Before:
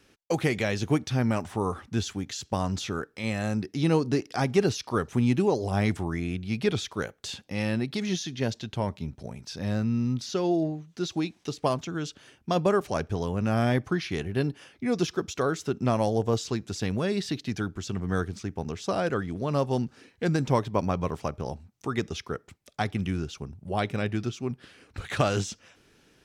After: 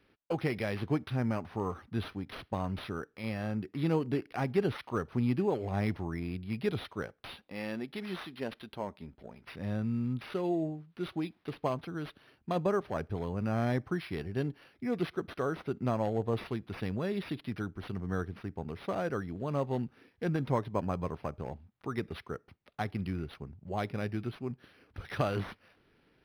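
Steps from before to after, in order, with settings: 7.26–9.45 bell 110 Hz -14 dB 1.2 oct; decimation joined by straight lines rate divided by 6×; gain -6 dB

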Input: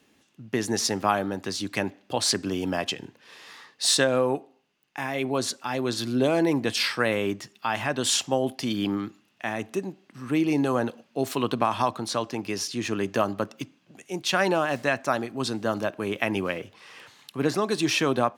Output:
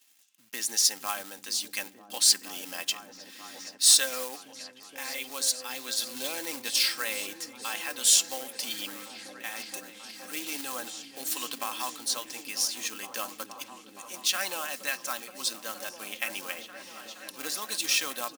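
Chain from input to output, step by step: comb 3.8 ms, depth 50%; in parallel at -5 dB: companded quantiser 4-bit; on the sum: differentiator; repeats that get brighter 0.47 s, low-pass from 200 Hz, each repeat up 1 oct, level -3 dB; gain +1 dB

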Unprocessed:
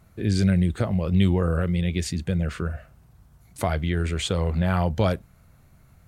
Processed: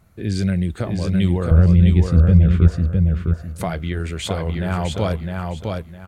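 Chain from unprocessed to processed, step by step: 1.51–2.68 RIAA curve playback; feedback echo 0.658 s, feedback 26%, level -4 dB

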